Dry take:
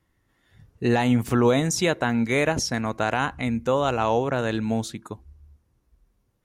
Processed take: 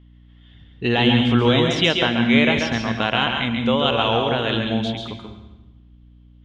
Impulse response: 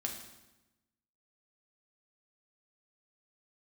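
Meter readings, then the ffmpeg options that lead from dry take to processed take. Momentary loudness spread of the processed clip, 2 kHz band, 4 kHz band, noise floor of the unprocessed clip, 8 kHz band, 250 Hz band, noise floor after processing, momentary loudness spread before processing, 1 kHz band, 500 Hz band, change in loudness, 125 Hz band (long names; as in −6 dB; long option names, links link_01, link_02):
9 LU, +6.5 dB, +13.0 dB, −70 dBFS, −9.0 dB, +4.5 dB, −49 dBFS, 8 LU, +2.5 dB, +2.0 dB, +4.5 dB, +3.5 dB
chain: -filter_complex "[0:a]lowpass=frequency=3200:width_type=q:width=9.9,asplit=2[link_01][link_02];[1:a]atrim=start_sample=2205,adelay=136[link_03];[link_02][link_03]afir=irnorm=-1:irlink=0,volume=-3.5dB[link_04];[link_01][link_04]amix=inputs=2:normalize=0,aeval=exprs='val(0)+0.00447*(sin(2*PI*60*n/s)+sin(2*PI*2*60*n/s)/2+sin(2*PI*3*60*n/s)/3+sin(2*PI*4*60*n/s)/4+sin(2*PI*5*60*n/s)/5)':channel_layout=same"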